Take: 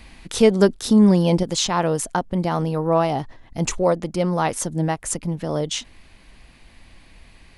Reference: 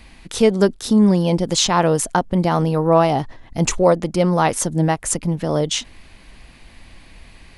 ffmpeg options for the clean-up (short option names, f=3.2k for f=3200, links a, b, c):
-af "asetnsamples=n=441:p=0,asendcmd='1.43 volume volume 4.5dB',volume=0dB"